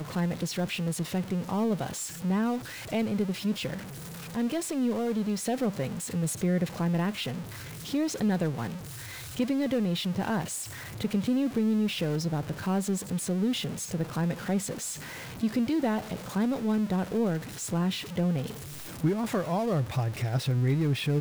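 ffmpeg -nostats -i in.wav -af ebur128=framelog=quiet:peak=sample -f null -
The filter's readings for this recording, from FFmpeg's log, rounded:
Integrated loudness:
  I:         -29.7 LUFS
  Threshold: -39.8 LUFS
Loudness range:
  LRA:         1.8 LU
  Threshold: -49.9 LUFS
  LRA low:   -30.7 LUFS
  LRA high:  -29.0 LUFS
Sample peak:
  Peak:      -15.9 dBFS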